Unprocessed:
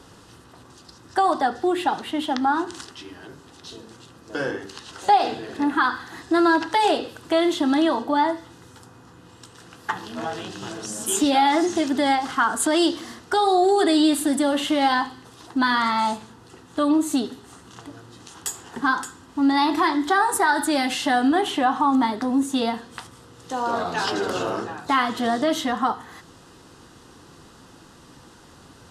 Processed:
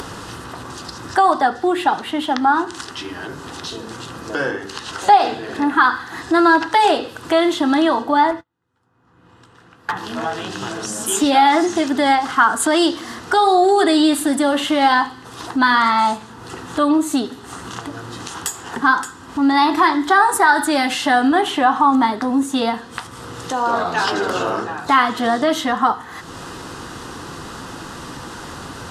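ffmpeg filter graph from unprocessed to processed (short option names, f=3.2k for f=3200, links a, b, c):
-filter_complex "[0:a]asettb=1/sr,asplit=3[a][b][c];[a]atrim=end=8.314[d];[b]atrim=start=8.31:end=9.97,asetpts=PTS-STARTPTS,afade=t=in:d=0.004:c=qsin,afade=t=out:st=1.656:d=0.004:c=qsin,bass=f=250:g=2,treble=f=4k:g=-10,asoftclip=type=hard:threshold=-23.5dB,agate=range=-40dB:threshold=-39dB:ratio=16:release=100:detection=peak[e];[c]atrim=start=9.966[f];[d][e]acrossfade=d=0.004:c1=hsin:c2=qsin[g];[g][f]acrossfade=d=0.004:c1=qsin:c2=hsin,equalizer=f=1.3k:w=0.81:g=4.5,acompressor=mode=upward:threshold=-24dB:ratio=2.5,volume=3dB"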